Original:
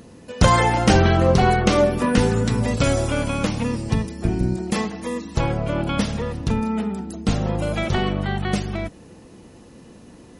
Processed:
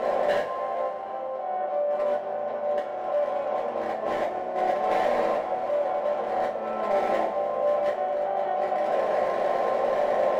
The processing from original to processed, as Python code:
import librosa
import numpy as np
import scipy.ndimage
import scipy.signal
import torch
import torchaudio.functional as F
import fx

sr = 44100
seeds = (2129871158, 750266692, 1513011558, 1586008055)

y = fx.bin_compress(x, sr, power=0.4)
y = fx.over_compress(y, sr, threshold_db=-18.0, ratio=-0.5)
y = fx.ladder_bandpass(y, sr, hz=660.0, resonance_pct=70)
y = np.clip(10.0 ** (25.0 / 20.0) * y, -1.0, 1.0) / 10.0 ** (25.0 / 20.0)
y = fx.rev_double_slope(y, sr, seeds[0], early_s=0.3, late_s=3.5, knee_db=-19, drr_db=-4.5)